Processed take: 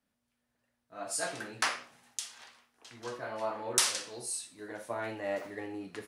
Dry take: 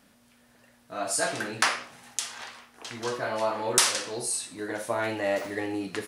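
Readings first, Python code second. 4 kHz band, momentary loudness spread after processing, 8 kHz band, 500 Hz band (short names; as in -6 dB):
-6.0 dB, 16 LU, -5.5 dB, -8.0 dB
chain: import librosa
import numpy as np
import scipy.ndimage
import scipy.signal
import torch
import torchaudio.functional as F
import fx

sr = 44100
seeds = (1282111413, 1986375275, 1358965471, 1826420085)

y = fx.band_widen(x, sr, depth_pct=40)
y = y * librosa.db_to_amplitude(-8.5)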